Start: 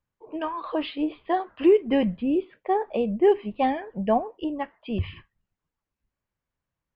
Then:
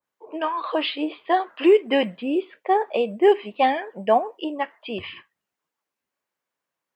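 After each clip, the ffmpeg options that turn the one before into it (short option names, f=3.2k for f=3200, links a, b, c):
-af "highpass=380,adynamicequalizer=threshold=0.0126:dfrequency=1700:dqfactor=0.7:tfrequency=1700:tqfactor=0.7:attack=5:release=100:ratio=0.375:range=2.5:mode=boostabove:tftype=highshelf,volume=5dB"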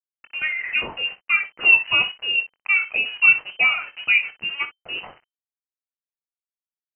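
-filter_complex "[0:a]aeval=exprs='val(0)*gte(abs(val(0)),0.0188)':c=same,asplit=2[a][b];[b]aecho=0:1:22|60:0.316|0.2[c];[a][c]amix=inputs=2:normalize=0,lowpass=f=2.6k:t=q:w=0.5098,lowpass=f=2.6k:t=q:w=0.6013,lowpass=f=2.6k:t=q:w=0.9,lowpass=f=2.6k:t=q:w=2.563,afreqshift=-3100"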